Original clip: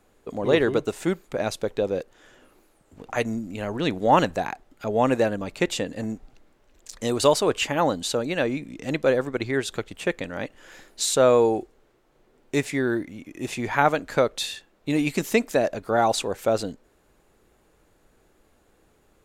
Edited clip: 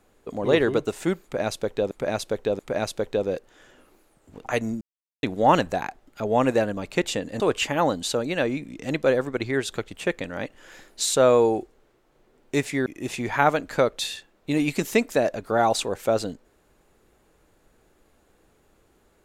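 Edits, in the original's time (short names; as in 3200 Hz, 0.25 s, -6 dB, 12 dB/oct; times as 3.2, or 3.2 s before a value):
1.23–1.91 loop, 3 plays
3.45–3.87 mute
6.04–7.4 cut
12.86–13.25 cut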